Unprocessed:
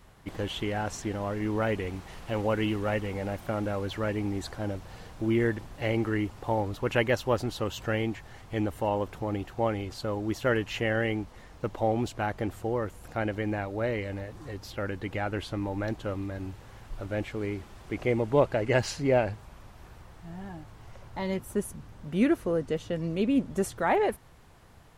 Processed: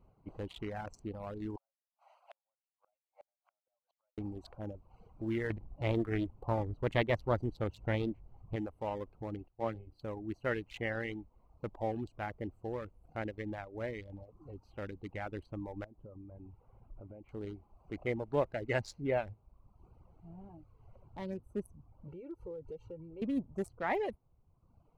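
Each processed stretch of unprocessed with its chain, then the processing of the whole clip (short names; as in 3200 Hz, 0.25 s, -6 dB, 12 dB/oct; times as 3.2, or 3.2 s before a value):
1.56–4.18 steep high-pass 590 Hz 72 dB/oct + flipped gate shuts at -31 dBFS, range -39 dB
5.5–8.56 low shelf 420 Hz +8.5 dB + Doppler distortion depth 0.41 ms
9.48–10.01 bell 6700 Hz -12.5 dB 0.85 oct + notches 60/120/180/240/300/360/420/480/540 Hz + three-band expander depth 70%
15.84–17.29 compressor 10:1, threshold -35 dBFS + air absorption 430 m
22.08–23.22 compressor 4:1, threshold -36 dBFS + comb 2.2 ms, depth 94%
whole clip: Wiener smoothing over 25 samples; reverb removal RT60 0.92 s; dynamic EQ 2000 Hz, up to +6 dB, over -54 dBFS, Q 5; gain -8 dB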